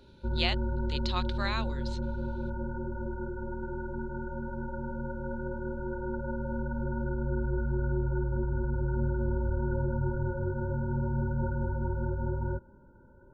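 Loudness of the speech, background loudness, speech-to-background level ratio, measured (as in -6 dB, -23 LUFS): -35.0 LUFS, -33.5 LUFS, -1.5 dB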